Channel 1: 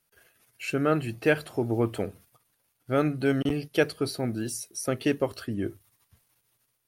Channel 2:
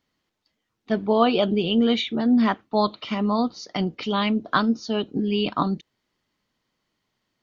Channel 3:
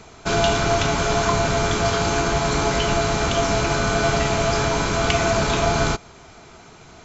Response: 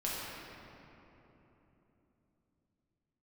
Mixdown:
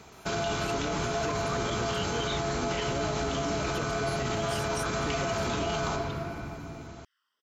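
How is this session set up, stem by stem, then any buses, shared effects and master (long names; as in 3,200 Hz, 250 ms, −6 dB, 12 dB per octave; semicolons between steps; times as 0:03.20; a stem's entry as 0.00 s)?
+3.0 dB, 0.00 s, bus A, no send, no processing
−1.0 dB, 0.30 s, bus A, no send, auto-filter high-pass saw down 2.1 Hz 460–3,200 Hz
−8.5 dB, 0.00 s, no bus, send −7.5 dB, high-pass filter 52 Hz
bus A: 0.0 dB, all-pass phaser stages 12, 0.38 Hz, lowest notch 720–2,000 Hz; downward compressor, threshold −28 dBFS, peak gain reduction 14 dB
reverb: on, RT60 3.5 s, pre-delay 5 ms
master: brickwall limiter −21.5 dBFS, peak gain reduction 10 dB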